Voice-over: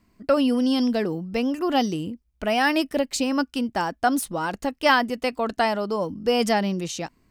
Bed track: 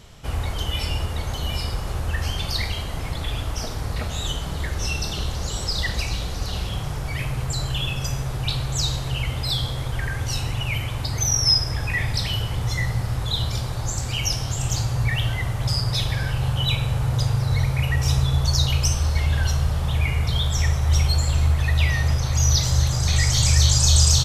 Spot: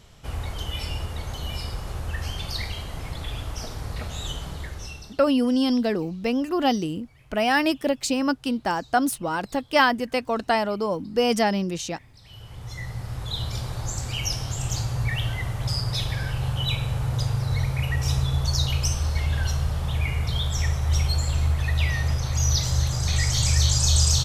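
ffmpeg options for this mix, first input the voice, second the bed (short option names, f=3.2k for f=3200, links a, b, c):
-filter_complex "[0:a]adelay=4900,volume=0dB[a];[1:a]volume=20dB,afade=t=out:st=4.43:d=0.78:silence=0.0668344,afade=t=in:st=12.2:d=1.49:silence=0.0562341[b];[a][b]amix=inputs=2:normalize=0"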